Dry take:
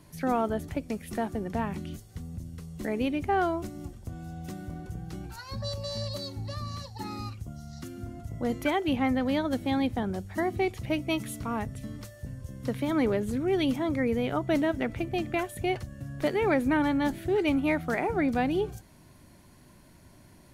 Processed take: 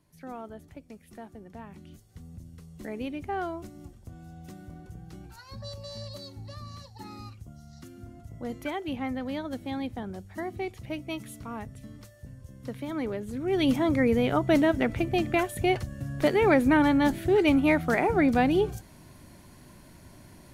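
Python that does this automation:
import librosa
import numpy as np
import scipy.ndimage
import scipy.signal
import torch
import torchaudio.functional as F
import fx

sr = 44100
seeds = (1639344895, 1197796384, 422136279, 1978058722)

y = fx.gain(x, sr, db=fx.line((1.64, -13.5), (2.27, -6.0), (13.29, -6.0), (13.71, 4.0)))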